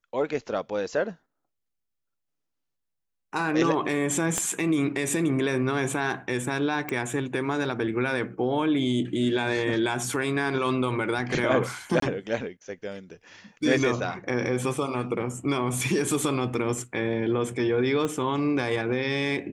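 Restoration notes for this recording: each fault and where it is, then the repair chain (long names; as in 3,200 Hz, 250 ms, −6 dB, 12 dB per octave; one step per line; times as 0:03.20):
0:04.38: click −11 dBFS
0:06.89: click
0:12.00–0:12.02: drop-out 23 ms
0:18.05: click −16 dBFS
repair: click removal
repair the gap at 0:12.00, 23 ms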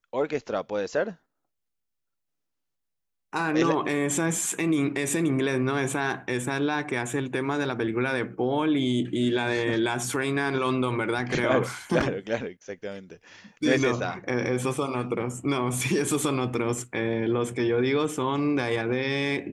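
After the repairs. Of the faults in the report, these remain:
0:04.38: click
0:18.05: click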